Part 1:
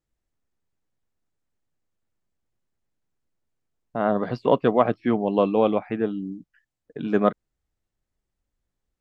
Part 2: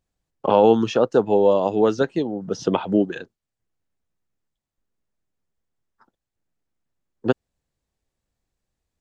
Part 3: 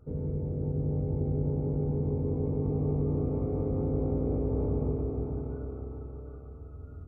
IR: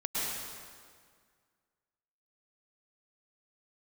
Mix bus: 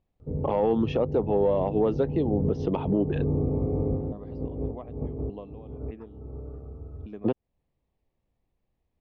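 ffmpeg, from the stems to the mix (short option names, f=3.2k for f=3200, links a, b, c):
-filter_complex "[0:a]acompressor=threshold=-20dB:ratio=3,aeval=exprs='val(0)*pow(10,-22*if(lt(mod(1.7*n/s,1),2*abs(1.7)/1000),1-mod(1.7*n/s,1)/(2*abs(1.7)/1000),(mod(1.7*n/s,1)-2*abs(1.7)/1000)/(1-2*abs(1.7)/1000))/20)':c=same,volume=-13dB,asplit=2[a][b];[1:a]lowpass=2.6k,volume=-3.5dB[c];[2:a]adelay=200,volume=-3.5dB[d];[b]apad=whole_len=320775[e];[d][e]sidechaincompress=threshold=-57dB:ratio=12:attack=22:release=152[f];[c][f]amix=inputs=2:normalize=0,acontrast=90,alimiter=limit=-15dB:level=0:latency=1:release=300,volume=0dB[g];[a][g]amix=inputs=2:normalize=0,lowpass=f=4k:p=1,equalizer=f=1.5k:t=o:w=0.52:g=-11.5"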